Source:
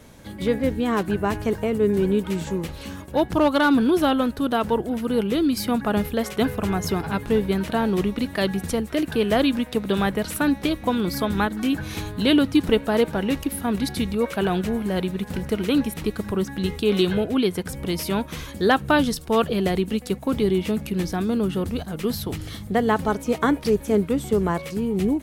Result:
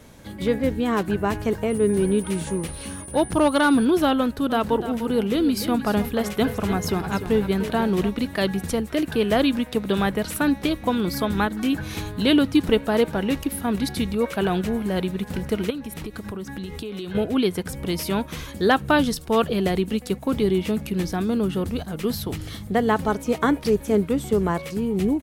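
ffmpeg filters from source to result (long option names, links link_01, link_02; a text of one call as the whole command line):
ffmpeg -i in.wav -filter_complex "[0:a]asettb=1/sr,asplit=3[link_01][link_02][link_03];[link_01]atrim=end=1.704[link_04];[link_02]atrim=start=1.7:end=3.85,asetpts=PTS-STARTPTS,afade=type=in:duration=0.004:curve=qsin,afade=type=out:start_time=2.146:duration=0.004:curve=qsin,aeval=exprs='val(0)+0.0126*sin(2*PI*9400*n/s)':channel_layout=same[link_05];[link_03]atrim=start=3.846[link_06];[link_04][link_05]acrossfade=duration=0.004:curve1=hsin:curve2=qsin[link_07];[link_07][link_06]acrossfade=duration=0.004:curve1=qsin:curve2=hsin,asplit=3[link_08][link_09][link_10];[link_08]afade=type=out:start_time=4.49:duration=0.02[link_11];[link_09]aecho=1:1:297:0.266,afade=type=in:start_time=4.49:duration=0.02,afade=type=out:start_time=8.08:duration=0.02[link_12];[link_10]afade=type=in:start_time=8.08:duration=0.02[link_13];[link_11][link_12][link_13]amix=inputs=3:normalize=0,asettb=1/sr,asplit=3[link_14][link_15][link_16];[link_14]atrim=end=15.704[link_17];[link_15]atrim=start=15.7:end=17.15,asetpts=PTS-STARTPTS,afade=type=in:duration=0.004:curve=qsin,afade=type=out:start_time=1.446:duration=0.004:curve=qsin,acompressor=threshold=-28dB:ratio=16:attack=3.2:release=140:knee=1:detection=peak[link_18];[link_16]atrim=start=17.146[link_19];[link_17][link_18]acrossfade=duration=0.004:curve1=hsin:curve2=qsin[link_20];[link_20][link_19]acrossfade=duration=0.004:curve1=qsin:curve2=hsin" out.wav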